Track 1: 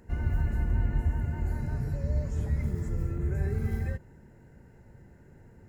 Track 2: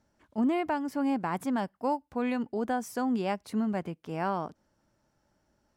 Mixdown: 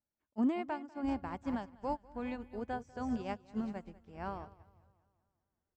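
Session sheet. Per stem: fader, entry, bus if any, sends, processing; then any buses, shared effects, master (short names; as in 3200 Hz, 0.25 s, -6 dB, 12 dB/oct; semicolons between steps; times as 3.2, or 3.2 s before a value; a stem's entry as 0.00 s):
-11.0 dB, 0.95 s, no send, echo send -12 dB, limiter -22 dBFS, peak gain reduction 5.5 dB; overloaded stage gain 26 dB; endless phaser +0.61 Hz
-2.5 dB, 0.00 s, no send, echo send -10 dB, steep low-pass 7900 Hz 72 dB/oct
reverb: off
echo: feedback echo 0.196 s, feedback 53%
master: upward expander 2.5:1, over -41 dBFS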